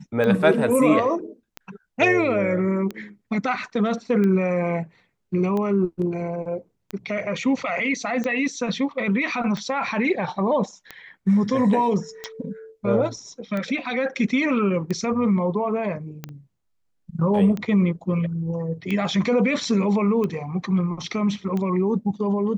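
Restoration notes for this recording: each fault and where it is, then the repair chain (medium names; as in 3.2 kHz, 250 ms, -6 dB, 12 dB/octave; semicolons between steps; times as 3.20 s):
tick 45 rpm -16 dBFS
16.29 s: pop -29 dBFS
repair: de-click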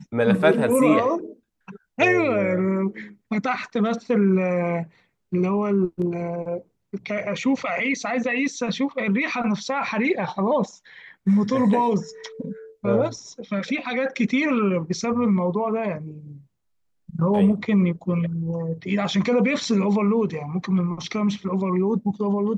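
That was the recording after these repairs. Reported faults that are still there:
16.29 s: pop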